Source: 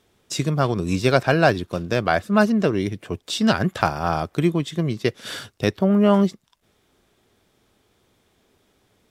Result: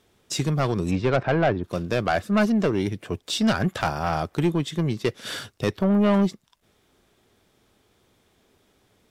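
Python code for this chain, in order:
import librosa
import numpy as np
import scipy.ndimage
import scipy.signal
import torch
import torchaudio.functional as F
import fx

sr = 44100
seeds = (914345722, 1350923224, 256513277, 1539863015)

y = fx.lowpass(x, sr, hz=fx.line((0.9, 2900.0), (1.63, 1300.0)), slope=12, at=(0.9, 1.63), fade=0.02)
y = 10.0 ** (-14.0 / 20.0) * np.tanh(y / 10.0 ** (-14.0 / 20.0))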